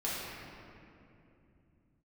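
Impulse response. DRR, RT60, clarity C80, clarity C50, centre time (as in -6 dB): -9.0 dB, 2.7 s, -1.0 dB, -3.0 dB, 162 ms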